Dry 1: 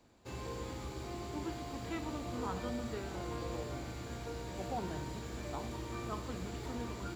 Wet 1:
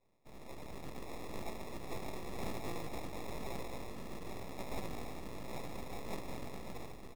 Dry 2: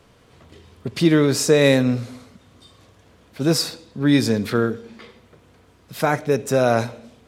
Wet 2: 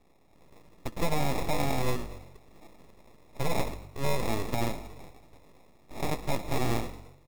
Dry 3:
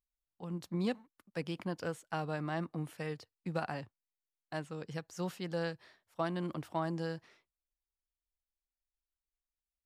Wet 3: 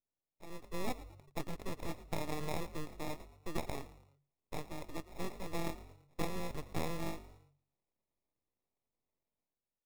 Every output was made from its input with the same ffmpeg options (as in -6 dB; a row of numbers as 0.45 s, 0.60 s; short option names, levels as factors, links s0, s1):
-filter_complex "[0:a]highpass=f=51:w=0.5412,highpass=f=51:w=1.3066,dynaudnorm=f=140:g=9:m=2.51,alimiter=limit=0.376:level=0:latency=1:release=134,aexciter=amount=1.3:drive=3.2:freq=4300,acrusher=samples=29:mix=1:aa=0.000001,aeval=exprs='abs(val(0))':c=same,asplit=4[s0][s1][s2][s3];[s1]adelay=112,afreqshift=47,volume=0.141[s4];[s2]adelay=224,afreqshift=94,volume=0.0582[s5];[s3]adelay=336,afreqshift=141,volume=0.0237[s6];[s0][s4][s5][s6]amix=inputs=4:normalize=0,volume=0.398"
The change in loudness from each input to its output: -4.5 LU, -13.0 LU, -4.0 LU